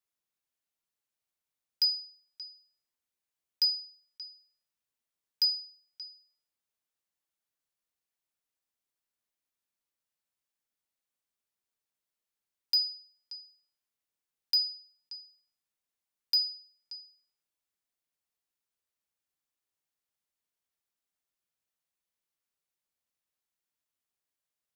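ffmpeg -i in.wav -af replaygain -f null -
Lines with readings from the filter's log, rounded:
track_gain = +22.6 dB
track_peak = 0.066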